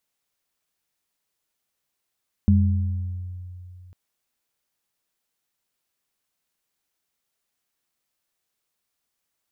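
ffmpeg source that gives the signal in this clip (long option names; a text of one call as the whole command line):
ffmpeg -f lavfi -i "aevalsrc='0.2*pow(10,-3*t/2.86)*sin(2*PI*90.2*t)+0.178*pow(10,-3*t/1.17)*sin(2*PI*202*t)':duration=1.45:sample_rate=44100" out.wav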